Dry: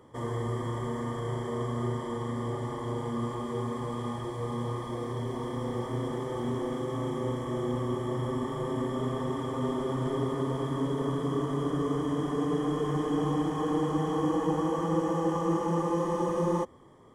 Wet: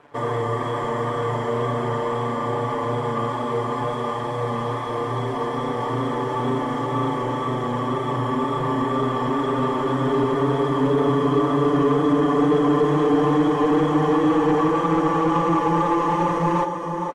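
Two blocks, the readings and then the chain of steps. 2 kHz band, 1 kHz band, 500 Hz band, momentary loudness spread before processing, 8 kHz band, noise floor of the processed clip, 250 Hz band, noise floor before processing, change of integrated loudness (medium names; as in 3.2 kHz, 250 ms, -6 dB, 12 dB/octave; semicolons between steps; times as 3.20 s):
+13.0 dB, +12.5 dB, +9.5 dB, 6 LU, no reading, -27 dBFS, +8.5 dB, -37 dBFS, +9.5 dB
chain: crossover distortion -55.5 dBFS; wow and flutter 20 cents; delay 464 ms -7.5 dB; overdrive pedal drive 17 dB, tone 1.5 kHz, clips at -16 dBFS; comb 6.9 ms; trim +4.5 dB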